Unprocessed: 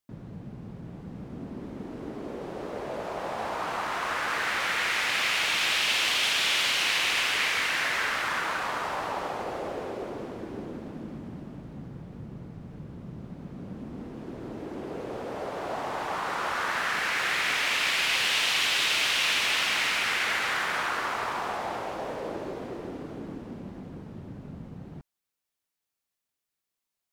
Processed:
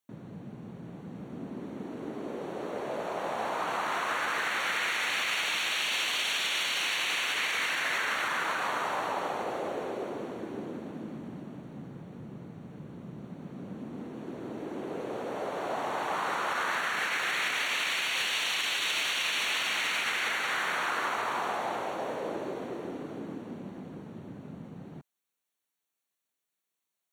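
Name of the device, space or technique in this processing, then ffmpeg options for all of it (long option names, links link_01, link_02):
PA system with an anti-feedback notch: -af "highpass=150,asuperstop=centerf=5000:order=8:qfactor=6,alimiter=limit=-21dB:level=0:latency=1:release=51"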